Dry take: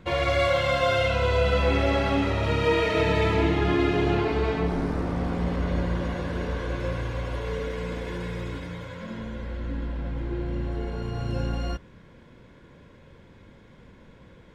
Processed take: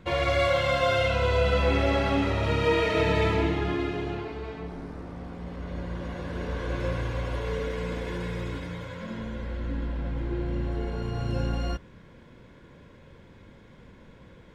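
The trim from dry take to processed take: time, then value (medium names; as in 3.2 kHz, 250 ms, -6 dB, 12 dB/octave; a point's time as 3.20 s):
3.26 s -1 dB
4.38 s -11.5 dB
5.42 s -11.5 dB
6.80 s 0 dB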